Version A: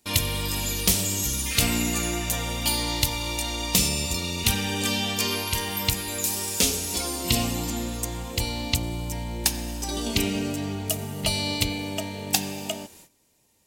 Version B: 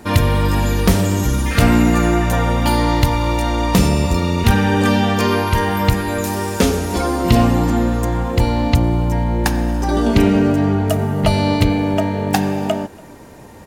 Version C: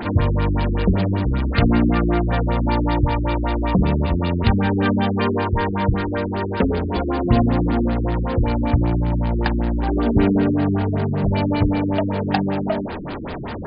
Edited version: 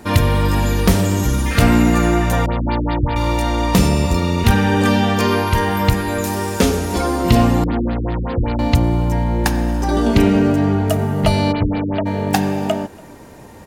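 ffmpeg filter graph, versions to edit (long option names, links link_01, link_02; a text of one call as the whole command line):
ffmpeg -i take0.wav -i take1.wav -i take2.wav -filter_complex "[2:a]asplit=3[link_01][link_02][link_03];[1:a]asplit=4[link_04][link_05][link_06][link_07];[link_04]atrim=end=2.462[link_08];[link_01]atrim=start=2.458:end=3.162[link_09];[link_05]atrim=start=3.158:end=7.642[link_10];[link_02]atrim=start=7.638:end=8.592[link_11];[link_06]atrim=start=8.588:end=11.53[link_12];[link_03]atrim=start=11.51:end=12.07[link_13];[link_07]atrim=start=12.05[link_14];[link_08][link_09]acrossfade=duration=0.004:curve1=hsin:curve2=hsin[link_15];[link_15][link_10]acrossfade=duration=0.004:curve1=hsin:curve2=hsin[link_16];[link_16][link_11]acrossfade=duration=0.004:curve1=hsin:curve2=hsin[link_17];[link_17][link_12]acrossfade=duration=0.004:curve1=hsin:curve2=hsin[link_18];[link_18][link_13]acrossfade=duration=0.02:curve1=tri:curve2=tri[link_19];[link_19][link_14]acrossfade=duration=0.02:curve1=tri:curve2=tri" out.wav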